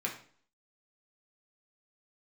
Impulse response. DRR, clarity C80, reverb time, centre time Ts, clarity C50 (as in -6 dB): -2.0 dB, 12.5 dB, 0.50 s, 20 ms, 8.5 dB